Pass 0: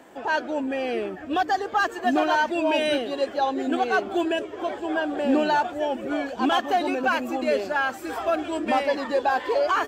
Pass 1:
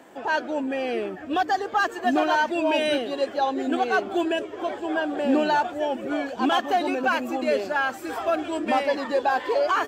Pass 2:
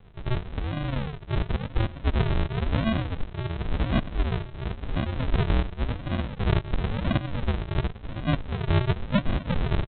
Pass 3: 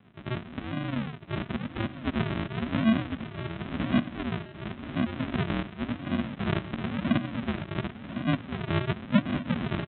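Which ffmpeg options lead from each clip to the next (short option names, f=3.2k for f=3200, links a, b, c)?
-af "highpass=75"
-af "afreqshift=62,aresample=8000,acrusher=samples=25:mix=1:aa=0.000001:lfo=1:lforange=15:lforate=0.94,aresample=44100,volume=-1dB"
-af "highpass=160,equalizer=f=240:t=q:w=4:g=8,equalizer=f=470:t=q:w=4:g=-10,equalizer=f=860:t=q:w=4:g=-5,lowpass=f=3.5k:w=0.5412,lowpass=f=3.5k:w=1.3066,aecho=1:1:1052:0.237"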